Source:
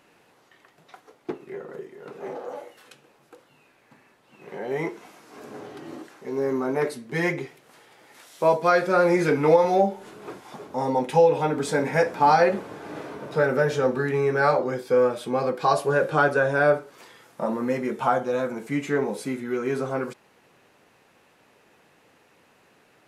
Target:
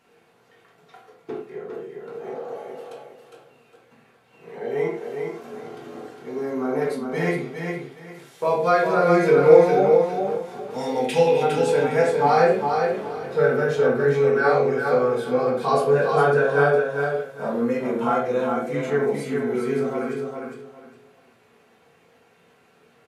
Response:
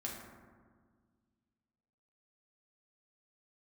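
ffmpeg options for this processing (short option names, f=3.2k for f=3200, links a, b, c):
-filter_complex "[0:a]asettb=1/sr,asplit=3[a][b][c];[a]atrim=end=10.704[d];[b]atrim=start=10.7:end=11.43,asetpts=PTS-STARTPTS,afade=t=in:d=0.004:c=qsin,afade=t=out:st=0.726:d=0.004:c=qsin,highshelf=f=1.7k:t=q:w=1.5:g=8.5[e];[c]atrim=start=11.426[f];[d][e]acrossfade=d=0.004:c1=hsin:c2=qsin[g];[g][f]acrossfade=d=0.004:c1=qsin:c2=hsin,aecho=1:1:407|814|1221:0.562|0.135|0.0324[h];[1:a]atrim=start_sample=2205,afade=t=out:st=0.27:d=0.01,atrim=end_sample=12348,asetrate=88200,aresample=44100[i];[h][i]afir=irnorm=-1:irlink=0,volume=5dB"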